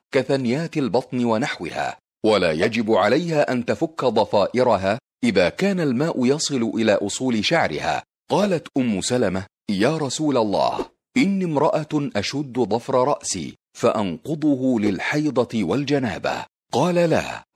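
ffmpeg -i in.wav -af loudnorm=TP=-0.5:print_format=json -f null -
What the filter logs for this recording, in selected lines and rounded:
"input_i" : "-21.4",
"input_tp" : "-3.8",
"input_lra" : "2.0",
"input_thresh" : "-31.5",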